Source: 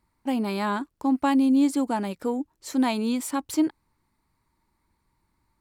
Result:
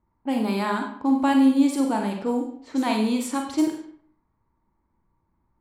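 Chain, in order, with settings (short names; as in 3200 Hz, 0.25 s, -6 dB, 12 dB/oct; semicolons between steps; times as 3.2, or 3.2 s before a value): Schroeder reverb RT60 0.6 s, combs from 33 ms, DRR 2 dB; low-pass opened by the level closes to 1100 Hz, open at -20.5 dBFS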